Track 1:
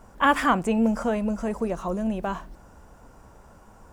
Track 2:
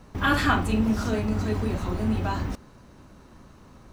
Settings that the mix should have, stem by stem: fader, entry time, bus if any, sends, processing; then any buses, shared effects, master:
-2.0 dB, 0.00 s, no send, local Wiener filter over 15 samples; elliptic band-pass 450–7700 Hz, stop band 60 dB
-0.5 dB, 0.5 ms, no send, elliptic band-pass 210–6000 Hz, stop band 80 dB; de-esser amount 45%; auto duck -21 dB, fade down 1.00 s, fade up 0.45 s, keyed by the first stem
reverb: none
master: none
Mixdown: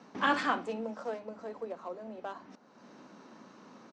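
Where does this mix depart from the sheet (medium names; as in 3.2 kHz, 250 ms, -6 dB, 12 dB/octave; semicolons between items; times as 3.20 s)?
stem 1 -2.0 dB -> -9.0 dB; stem 2: polarity flipped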